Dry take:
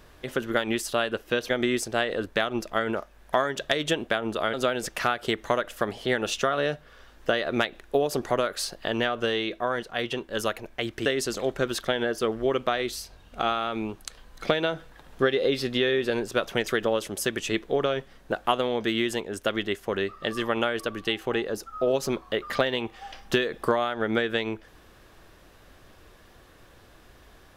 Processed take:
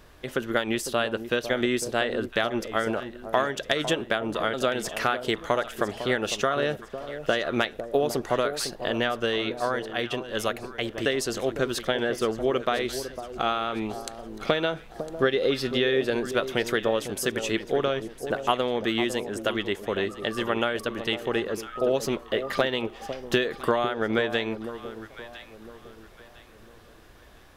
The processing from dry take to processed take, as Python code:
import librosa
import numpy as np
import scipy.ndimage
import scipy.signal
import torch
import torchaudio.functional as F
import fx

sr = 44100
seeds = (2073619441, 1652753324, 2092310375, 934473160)

y = fx.echo_alternate(x, sr, ms=503, hz=930.0, feedback_pct=56, wet_db=-9.5)